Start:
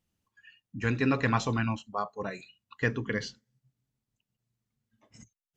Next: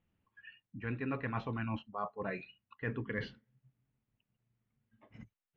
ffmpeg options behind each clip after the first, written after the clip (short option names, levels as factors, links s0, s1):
-af "lowpass=f=2800:w=0.5412,lowpass=f=2800:w=1.3066,areverse,acompressor=threshold=0.0141:ratio=5,areverse,volume=1.26"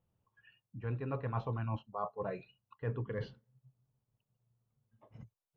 -af "equalizer=f=125:t=o:w=1:g=8,equalizer=f=250:t=o:w=1:g=-6,equalizer=f=500:t=o:w=1:g=6,equalizer=f=1000:t=o:w=1:g=5,equalizer=f=2000:t=o:w=1:g=-10,volume=0.708"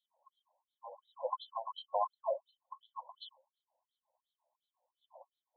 -af "alimiter=level_in=3.16:limit=0.0631:level=0:latency=1:release=54,volume=0.316,afftfilt=real='re*(1-between(b*sr/4096,1100,3000))':imag='im*(1-between(b*sr/4096,1100,3000))':win_size=4096:overlap=0.75,afftfilt=real='re*between(b*sr/1024,680*pow(3100/680,0.5+0.5*sin(2*PI*2.8*pts/sr))/1.41,680*pow(3100/680,0.5+0.5*sin(2*PI*2.8*pts/sr))*1.41)':imag='im*between(b*sr/1024,680*pow(3100/680,0.5+0.5*sin(2*PI*2.8*pts/sr))/1.41,680*pow(3100/680,0.5+0.5*sin(2*PI*2.8*pts/sr))*1.41)':win_size=1024:overlap=0.75,volume=6.31"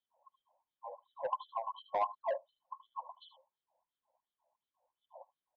-filter_complex "[0:a]lowpass=1900,acrossover=split=960[s0][s1];[s0]asoftclip=type=tanh:threshold=0.02[s2];[s1]aecho=1:1:76:0.282[s3];[s2][s3]amix=inputs=2:normalize=0,volume=1.41"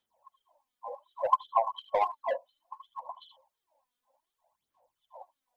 -af "aphaser=in_gain=1:out_gain=1:delay=4.1:decay=0.61:speed=0.63:type=sinusoidal,volume=1.78"